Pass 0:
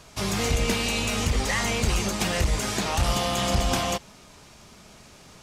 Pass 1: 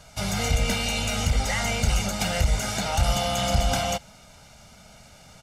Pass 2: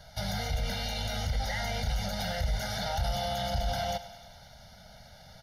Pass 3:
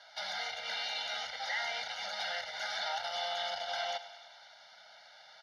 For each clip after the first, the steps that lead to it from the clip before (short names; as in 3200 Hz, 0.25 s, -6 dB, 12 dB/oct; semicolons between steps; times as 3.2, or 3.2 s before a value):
comb 1.4 ms, depth 68%; gain -2 dB
limiter -21.5 dBFS, peak gain reduction 9 dB; fixed phaser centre 1700 Hz, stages 8; thinning echo 0.102 s, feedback 68%, level -15 dB
Butterworth band-pass 2000 Hz, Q 0.55; gain +1.5 dB